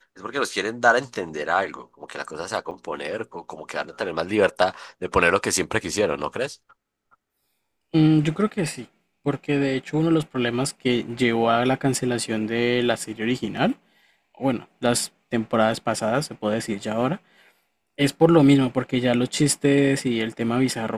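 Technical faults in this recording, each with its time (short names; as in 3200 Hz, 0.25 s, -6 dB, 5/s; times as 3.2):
2.71 gap 4.8 ms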